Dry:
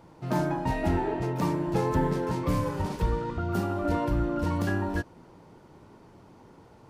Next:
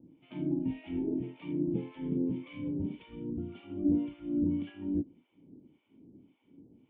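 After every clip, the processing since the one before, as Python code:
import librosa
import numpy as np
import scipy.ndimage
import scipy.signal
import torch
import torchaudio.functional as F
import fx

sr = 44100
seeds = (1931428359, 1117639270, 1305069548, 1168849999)

y = fx.harmonic_tremolo(x, sr, hz=1.8, depth_pct=100, crossover_hz=760.0)
y = fx.formant_cascade(y, sr, vowel='i')
y = fx.low_shelf(y, sr, hz=75.0, db=-11.0)
y = y * 10.0 ** (8.5 / 20.0)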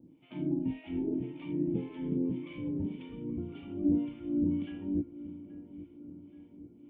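y = fx.echo_wet_lowpass(x, sr, ms=828, feedback_pct=56, hz=1500.0, wet_db=-15)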